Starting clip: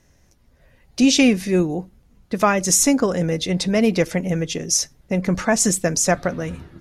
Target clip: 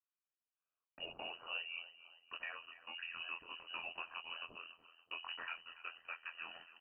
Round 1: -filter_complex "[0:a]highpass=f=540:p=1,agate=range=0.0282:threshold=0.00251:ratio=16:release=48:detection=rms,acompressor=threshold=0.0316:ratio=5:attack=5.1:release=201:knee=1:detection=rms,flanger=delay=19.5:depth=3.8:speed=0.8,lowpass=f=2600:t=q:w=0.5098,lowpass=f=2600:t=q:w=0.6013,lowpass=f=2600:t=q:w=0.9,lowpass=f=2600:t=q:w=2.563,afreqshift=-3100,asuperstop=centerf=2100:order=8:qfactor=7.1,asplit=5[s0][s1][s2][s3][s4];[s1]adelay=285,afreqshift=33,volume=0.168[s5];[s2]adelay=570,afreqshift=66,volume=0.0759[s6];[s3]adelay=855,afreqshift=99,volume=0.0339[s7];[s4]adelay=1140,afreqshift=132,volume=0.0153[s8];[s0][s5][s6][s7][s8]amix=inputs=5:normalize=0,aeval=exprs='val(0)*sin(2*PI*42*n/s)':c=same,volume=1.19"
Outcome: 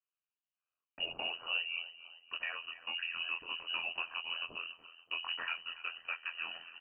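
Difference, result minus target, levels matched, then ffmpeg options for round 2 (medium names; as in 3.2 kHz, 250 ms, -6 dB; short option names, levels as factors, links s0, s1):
compression: peak gain reduction -5.5 dB; 500 Hz band -4.0 dB
-filter_complex "[0:a]highpass=f=1300:p=1,agate=range=0.0282:threshold=0.00251:ratio=16:release=48:detection=rms,acompressor=threshold=0.0141:ratio=5:attack=5.1:release=201:knee=1:detection=rms,flanger=delay=19.5:depth=3.8:speed=0.8,lowpass=f=2600:t=q:w=0.5098,lowpass=f=2600:t=q:w=0.6013,lowpass=f=2600:t=q:w=0.9,lowpass=f=2600:t=q:w=2.563,afreqshift=-3100,asuperstop=centerf=2100:order=8:qfactor=7.1,asplit=5[s0][s1][s2][s3][s4];[s1]adelay=285,afreqshift=33,volume=0.168[s5];[s2]adelay=570,afreqshift=66,volume=0.0759[s6];[s3]adelay=855,afreqshift=99,volume=0.0339[s7];[s4]adelay=1140,afreqshift=132,volume=0.0153[s8];[s0][s5][s6][s7][s8]amix=inputs=5:normalize=0,aeval=exprs='val(0)*sin(2*PI*42*n/s)':c=same,volume=1.19"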